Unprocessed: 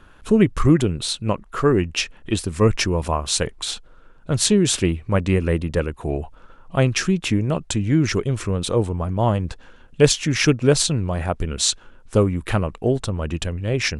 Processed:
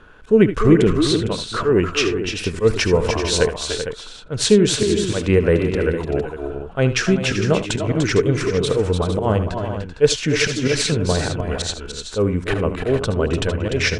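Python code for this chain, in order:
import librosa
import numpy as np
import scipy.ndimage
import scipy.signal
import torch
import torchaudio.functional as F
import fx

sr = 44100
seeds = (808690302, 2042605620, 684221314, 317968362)

p1 = fx.low_shelf(x, sr, hz=180.0, db=-3.5)
p2 = fx.rider(p1, sr, range_db=3, speed_s=0.5)
p3 = p1 + F.gain(torch.from_numpy(p2), -1.0).numpy()
p4 = fx.auto_swell(p3, sr, attack_ms=129.0)
p5 = fx.air_absorb(p4, sr, metres=60.0)
p6 = fx.small_body(p5, sr, hz=(450.0, 1500.0), ring_ms=45, db=9)
p7 = p6 + fx.echo_multitap(p6, sr, ms=(67, 77, 295, 298, 386, 457), db=(-18.5, -13.5, -10.0, -9.5, -11.0, -11.0), dry=0)
y = F.gain(torch.from_numpy(p7), -2.5).numpy()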